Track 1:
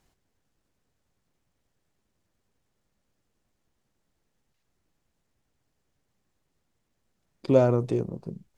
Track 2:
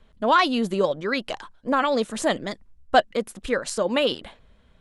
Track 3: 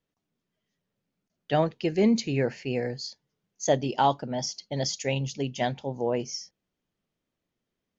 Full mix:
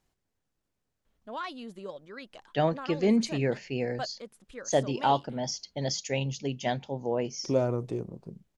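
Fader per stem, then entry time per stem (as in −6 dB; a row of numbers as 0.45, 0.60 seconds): −6.5, −18.5, −2.0 decibels; 0.00, 1.05, 1.05 seconds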